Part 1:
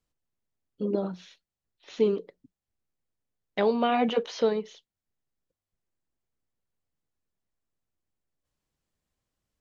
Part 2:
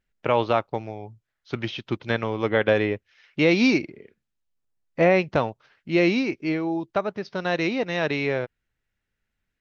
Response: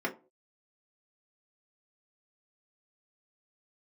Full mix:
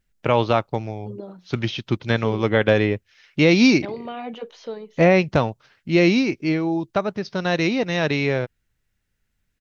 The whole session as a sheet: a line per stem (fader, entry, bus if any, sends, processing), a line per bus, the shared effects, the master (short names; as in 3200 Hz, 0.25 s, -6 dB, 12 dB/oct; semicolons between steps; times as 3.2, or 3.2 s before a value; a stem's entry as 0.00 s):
-8.0 dB, 0.25 s, no send, dry
+2.0 dB, 0.00 s, no send, tone controls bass +6 dB, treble +7 dB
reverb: off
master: dry